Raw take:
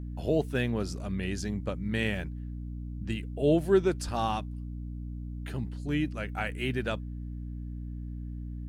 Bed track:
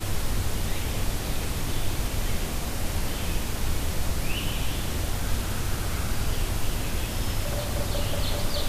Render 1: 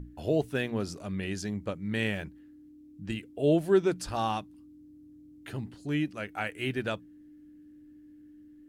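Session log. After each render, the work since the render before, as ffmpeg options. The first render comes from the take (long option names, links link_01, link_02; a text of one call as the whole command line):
ffmpeg -i in.wav -af "bandreject=frequency=60:width_type=h:width=6,bandreject=frequency=120:width_type=h:width=6,bandreject=frequency=180:width_type=h:width=6,bandreject=frequency=240:width_type=h:width=6" out.wav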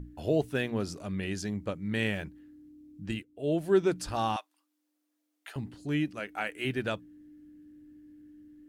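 ffmpeg -i in.wav -filter_complex "[0:a]asettb=1/sr,asplit=3[link_01][link_02][link_03];[link_01]atrim=end=4.364[link_04];[link_02]atrim=start=4.36:end=5.56,asetpts=PTS-STARTPTS,afade=type=in:duration=0.004:curve=qsin,afade=type=out:start_time=1.196:duration=0.004:curve=qsin,highpass=frequency=670:width=0.5412,highpass=frequency=670:width=1.3066[link_05];[link_03]atrim=start=5.556[link_06];[link_04][link_05]acrossfade=duration=0.004:curve1=hsin:curve2=qsin[link_07];[link_07][link_06]acrossfade=duration=0.004:curve1=qsin:curve2=hsin,asettb=1/sr,asplit=3[link_08][link_09][link_10];[link_08]atrim=end=6.194[link_11];[link_09]atrim=start=6.19:end=6.65,asetpts=PTS-STARTPTS,afade=type=in:duration=0.004:curve=qsin,afade=type=out:start_time=0.456:duration=0.004:curve=qsin,equalizer=frequency=110:width=1.5:gain=-15[link_12];[link_10]atrim=start=6.646[link_13];[link_11][link_12]acrossfade=duration=0.004:curve1=hsin:curve2=qsin[link_14];[link_14][link_13]acrossfade=duration=0.004:curve1=qsin:curve2=hsin,asplit=2[link_15][link_16];[link_15]atrim=end=3.23,asetpts=PTS-STARTPTS,afade=type=out:start_time=3.226:duration=0.004:curve=hsin:silence=0.141254[link_17];[link_16]atrim=start=3.23,asetpts=PTS-STARTPTS,afade=type=in:duration=0.59:silence=0.141254[link_18];[link_17][link_18]concat=n=2:v=0:a=1" out.wav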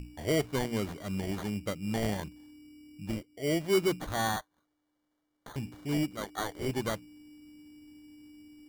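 ffmpeg -i in.wav -af "acrusher=samples=17:mix=1:aa=0.000001,asoftclip=type=tanh:threshold=-18dB" out.wav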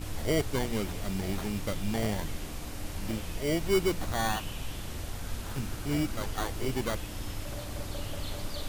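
ffmpeg -i in.wav -i bed.wav -filter_complex "[1:a]volume=-9.5dB[link_01];[0:a][link_01]amix=inputs=2:normalize=0" out.wav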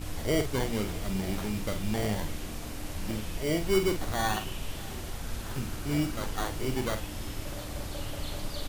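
ffmpeg -i in.wav -filter_complex "[0:a]asplit=2[link_01][link_02];[link_02]adelay=47,volume=-8dB[link_03];[link_01][link_03]amix=inputs=2:normalize=0,aecho=1:1:604|1208|1812|2416|3020:0.0891|0.0526|0.031|0.0183|0.0108" out.wav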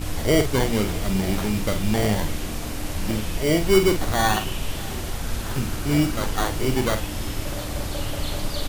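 ffmpeg -i in.wav -af "volume=8.5dB" out.wav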